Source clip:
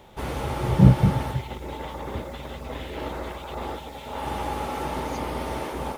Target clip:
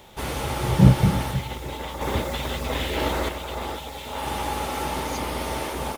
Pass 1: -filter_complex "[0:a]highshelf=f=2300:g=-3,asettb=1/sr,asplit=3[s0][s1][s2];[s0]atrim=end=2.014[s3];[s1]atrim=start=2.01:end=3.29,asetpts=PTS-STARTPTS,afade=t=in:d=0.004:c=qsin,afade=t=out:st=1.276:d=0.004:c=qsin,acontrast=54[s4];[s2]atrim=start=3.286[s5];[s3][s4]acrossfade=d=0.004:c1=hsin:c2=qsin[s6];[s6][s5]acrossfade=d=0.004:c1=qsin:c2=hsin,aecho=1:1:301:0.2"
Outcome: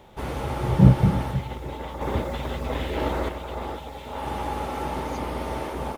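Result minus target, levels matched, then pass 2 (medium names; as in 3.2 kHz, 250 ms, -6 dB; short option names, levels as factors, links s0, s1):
4 kHz band -7.5 dB
-filter_complex "[0:a]highshelf=f=2300:g=9,asettb=1/sr,asplit=3[s0][s1][s2];[s0]atrim=end=2.014[s3];[s1]atrim=start=2.01:end=3.29,asetpts=PTS-STARTPTS,afade=t=in:d=0.004:c=qsin,afade=t=out:st=1.276:d=0.004:c=qsin,acontrast=54[s4];[s2]atrim=start=3.286[s5];[s3][s4]acrossfade=d=0.004:c1=hsin:c2=qsin[s6];[s6][s5]acrossfade=d=0.004:c1=qsin:c2=hsin,aecho=1:1:301:0.2"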